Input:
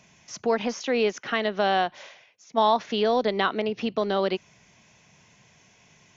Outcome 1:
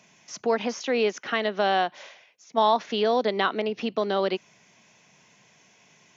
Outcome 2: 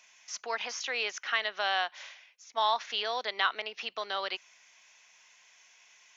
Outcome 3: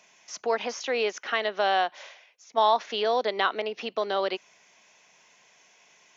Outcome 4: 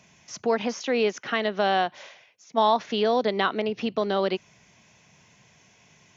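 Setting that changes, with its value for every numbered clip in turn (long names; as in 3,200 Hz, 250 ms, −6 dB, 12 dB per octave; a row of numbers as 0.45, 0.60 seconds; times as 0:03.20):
high-pass filter, corner frequency: 180, 1,200, 470, 41 Hertz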